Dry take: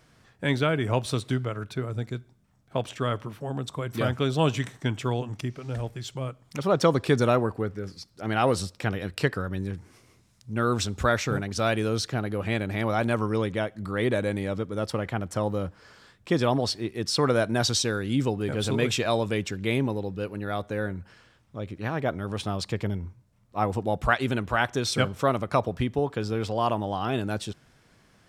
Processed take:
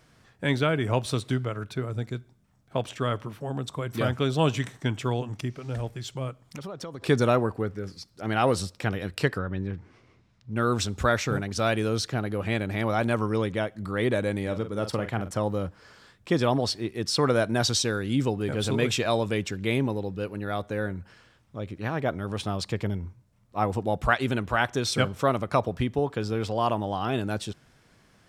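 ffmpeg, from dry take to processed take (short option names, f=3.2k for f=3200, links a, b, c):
-filter_complex "[0:a]asettb=1/sr,asplit=3[a][b][c];[a]atrim=end=6.414[d];[b]atrim=start=6.41:end=7.02,asetpts=PTS-STARTPTS,afade=t=in:d=0.004:c=qsin,afade=t=out:st=0.606:d=0.004:c=qsin,acompressor=threshold=-34dB:ratio=10:attack=3.2:release=140:knee=1:detection=peak[e];[c]atrim=start=7.016[f];[d][e]acrossfade=d=0.004:c1=hsin:c2=qsin[g];[g][f]acrossfade=d=0.004:c1=qsin:c2=hsin,asettb=1/sr,asplit=3[h][i][j];[h]atrim=end=9.384[k];[i]atrim=start=9.38:end=10.56,asetpts=PTS-STARTPTS,afade=t=in:d=0.004:c=qsin,afade=t=out:st=1.176:d=0.004:c=qsin,lowpass=3.3k[l];[j]atrim=start=10.556[m];[k][l]acrossfade=d=0.004:c1=hsin:c2=qsin[n];[n][m]acrossfade=d=0.004:c1=qsin:c2=hsin,asettb=1/sr,asplit=3[o][p][q];[o]atrim=end=14.424[r];[p]atrim=start=14.42:end=15.31,asetpts=PTS-STARTPTS,afade=t=in:d=0.004:c=qsin,afade=t=out:st=0.886:d=0.004:c=qsin,asplit=2[s][t];[t]adelay=44,volume=-10dB[u];[s][u]amix=inputs=2:normalize=0,atrim=end_sample=39249[v];[q]atrim=start=15.306[w];[r][v]acrossfade=d=0.004:c1=hsin:c2=qsin[x];[x][w]acrossfade=d=0.004:c1=qsin:c2=hsin"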